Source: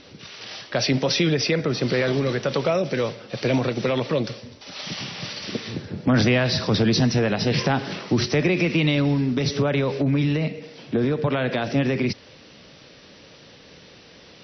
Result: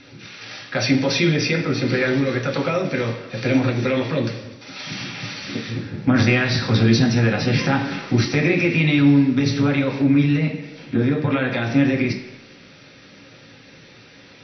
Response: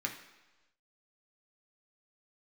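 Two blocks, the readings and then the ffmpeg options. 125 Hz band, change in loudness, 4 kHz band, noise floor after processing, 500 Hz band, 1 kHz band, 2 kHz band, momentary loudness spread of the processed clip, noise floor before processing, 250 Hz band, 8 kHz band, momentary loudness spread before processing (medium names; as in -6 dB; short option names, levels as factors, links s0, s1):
+3.5 dB, +3.0 dB, 0.0 dB, -46 dBFS, -0.5 dB, +1.5 dB, +4.5 dB, 13 LU, -48 dBFS, +4.5 dB, no reading, 11 LU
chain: -filter_complex "[1:a]atrim=start_sample=2205[s0];[0:a][s0]afir=irnorm=-1:irlink=0"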